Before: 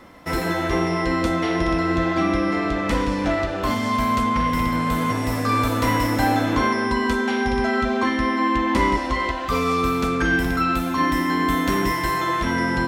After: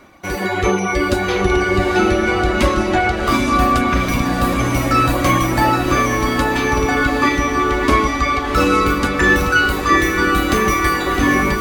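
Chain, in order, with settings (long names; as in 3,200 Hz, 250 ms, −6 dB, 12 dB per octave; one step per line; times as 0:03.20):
speed change +11%
automatic gain control
reverb reduction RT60 2 s
feedback delay with all-pass diffusion 774 ms, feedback 55%, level −5 dB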